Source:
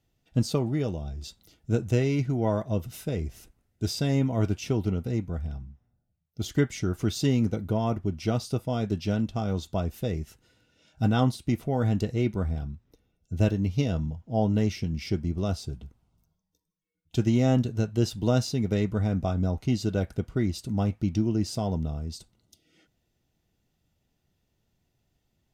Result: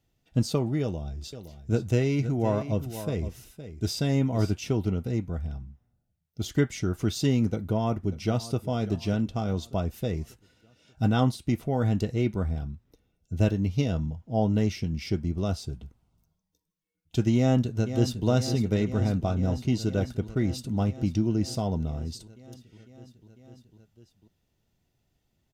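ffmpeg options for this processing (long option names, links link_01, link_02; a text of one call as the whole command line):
ffmpeg -i in.wav -filter_complex "[0:a]asettb=1/sr,asplit=3[link_01][link_02][link_03];[link_01]atrim=end=0.814[link_04];[link_02]atrim=start=0.81:end=4.53,asetpts=PTS-STARTPTS,afade=type=in:duration=0.004:curve=qsin,afade=type=out:start_time=3.716:duration=0.004:curve=qsin,aecho=1:1:515:0.251,atrim=end_sample=164052[link_05];[link_03]atrim=start=4.526[link_06];[link_04][link_05]acrossfade=duration=0.004:curve1=hsin:curve2=qsin[link_07];[link_07][link_06]acrossfade=duration=0.004:curve1=qsin:curve2=hsin,asplit=2[link_08][link_09];[link_09]afade=type=in:start_time=7.44:duration=0.01,afade=type=out:start_time=8.58:duration=0.01,aecho=0:1:590|1180|1770|2360:0.141254|0.0706269|0.0353134|0.0176567[link_10];[link_08][link_10]amix=inputs=2:normalize=0,asplit=2[link_11][link_12];[link_12]afade=type=in:start_time=17.36:duration=0.01,afade=type=out:start_time=18.27:duration=0.01,aecho=0:1:500|1000|1500|2000|2500|3000|3500|4000|4500|5000|5500|6000:0.316228|0.252982|0.202386|0.161909|0.129527|0.103622|0.0828972|0.0663178|0.0530542|0.0424434|0.0339547|0.0271638[link_13];[link_11][link_13]amix=inputs=2:normalize=0" out.wav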